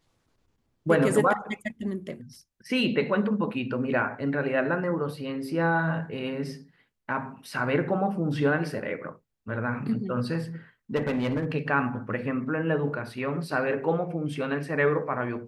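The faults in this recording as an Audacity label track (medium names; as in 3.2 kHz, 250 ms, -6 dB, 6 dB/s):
10.950000	11.520000	clipped -23 dBFS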